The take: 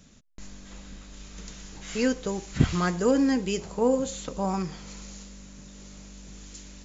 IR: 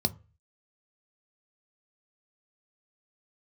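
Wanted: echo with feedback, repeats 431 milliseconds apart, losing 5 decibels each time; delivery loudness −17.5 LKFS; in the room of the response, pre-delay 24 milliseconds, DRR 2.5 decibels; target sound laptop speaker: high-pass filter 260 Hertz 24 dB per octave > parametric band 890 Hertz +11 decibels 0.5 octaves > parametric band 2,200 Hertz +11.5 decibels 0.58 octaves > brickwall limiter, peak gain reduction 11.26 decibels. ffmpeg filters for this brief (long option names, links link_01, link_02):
-filter_complex "[0:a]aecho=1:1:431|862|1293|1724|2155|2586|3017:0.562|0.315|0.176|0.0988|0.0553|0.031|0.0173,asplit=2[link_01][link_02];[1:a]atrim=start_sample=2205,adelay=24[link_03];[link_02][link_03]afir=irnorm=-1:irlink=0,volume=-9dB[link_04];[link_01][link_04]amix=inputs=2:normalize=0,highpass=frequency=260:width=0.5412,highpass=frequency=260:width=1.3066,equalizer=frequency=890:width_type=o:width=0.5:gain=11,equalizer=frequency=2200:width_type=o:width=0.58:gain=11.5,volume=9dB,alimiter=limit=-7.5dB:level=0:latency=1"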